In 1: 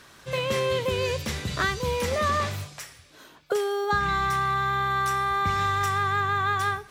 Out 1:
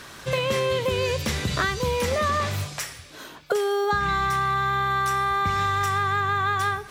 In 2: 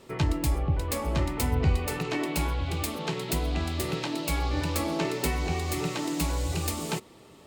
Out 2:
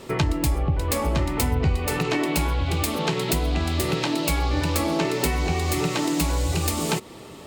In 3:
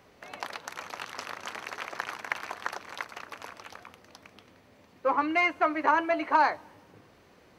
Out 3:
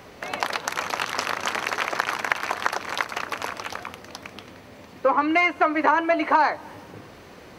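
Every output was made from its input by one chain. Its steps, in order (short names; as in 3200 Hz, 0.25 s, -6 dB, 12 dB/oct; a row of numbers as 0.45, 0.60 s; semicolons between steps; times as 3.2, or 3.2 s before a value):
compressor 2.5:1, threshold -33 dBFS; match loudness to -24 LUFS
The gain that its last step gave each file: +9.0, +11.0, +13.0 dB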